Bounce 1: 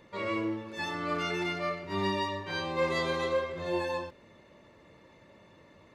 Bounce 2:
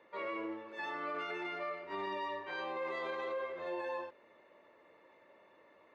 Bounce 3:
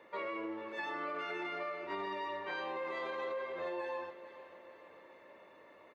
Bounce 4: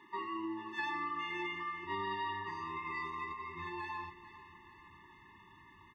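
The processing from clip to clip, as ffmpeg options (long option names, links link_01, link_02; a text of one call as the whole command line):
ffmpeg -i in.wav -filter_complex "[0:a]acrossover=split=330 2900:gain=0.0708 1 0.141[link_01][link_02][link_03];[link_01][link_02][link_03]amix=inputs=3:normalize=0,alimiter=level_in=4.5dB:limit=-24dB:level=0:latency=1:release=26,volume=-4.5dB,volume=-3dB" out.wav
ffmpeg -i in.wav -af "acompressor=threshold=-41dB:ratio=6,aecho=1:1:442|884|1326|1768|2210:0.178|0.0978|0.0538|0.0296|0.0163,volume=4.5dB" out.wav
ffmpeg -i in.wav -af "asubboost=boost=12:cutoff=96,afftfilt=real='re*eq(mod(floor(b*sr/1024/430),2),0)':imag='im*eq(mod(floor(b*sr/1024/430),2),0)':win_size=1024:overlap=0.75,volume=3.5dB" out.wav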